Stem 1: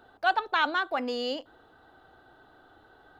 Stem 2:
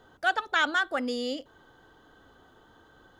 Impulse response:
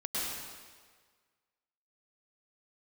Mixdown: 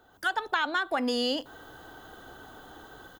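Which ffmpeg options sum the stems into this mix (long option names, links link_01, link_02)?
-filter_complex "[0:a]dynaudnorm=framelen=150:gausssize=5:maxgain=11.5dB,volume=-5dB,asplit=2[link_01][link_02];[1:a]aemphasis=mode=production:type=50fm,dynaudnorm=framelen=110:gausssize=3:maxgain=16dB,adelay=0.5,volume=-10.5dB[link_03];[link_02]apad=whole_len=140775[link_04];[link_03][link_04]sidechaincompress=threshold=-28dB:ratio=8:attack=16:release=279[link_05];[link_01][link_05]amix=inputs=2:normalize=0,acompressor=threshold=-24dB:ratio=6"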